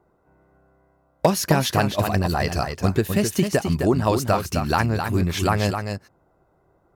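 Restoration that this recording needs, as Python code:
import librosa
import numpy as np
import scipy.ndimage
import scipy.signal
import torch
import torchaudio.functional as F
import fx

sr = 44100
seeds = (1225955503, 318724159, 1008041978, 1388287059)

y = fx.fix_declip(x, sr, threshold_db=-6.0)
y = fx.fix_echo_inverse(y, sr, delay_ms=260, level_db=-6.5)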